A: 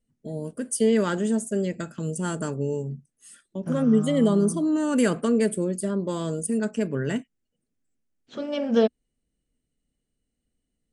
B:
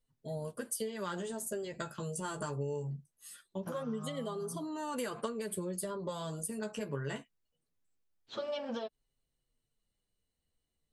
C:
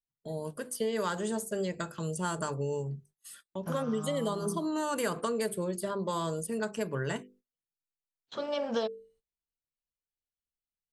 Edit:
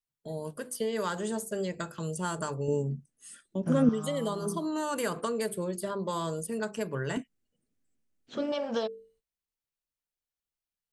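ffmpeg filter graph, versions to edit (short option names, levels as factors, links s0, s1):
-filter_complex "[0:a]asplit=2[s0][s1];[2:a]asplit=3[s2][s3][s4];[s2]atrim=end=2.682[s5];[s0]atrim=start=2.678:end=3.892[s6];[s3]atrim=start=3.888:end=7.172[s7];[s1]atrim=start=7.168:end=8.522[s8];[s4]atrim=start=8.518[s9];[s5][s6]acrossfade=d=0.004:c1=hsin:c2=hsin[s10];[s10][s7]acrossfade=d=0.004:c1=hsin:c2=hsin[s11];[s11][s8]acrossfade=d=0.004:c1=hsin:c2=hsin[s12];[s12][s9]acrossfade=d=0.004:c1=hsin:c2=hsin"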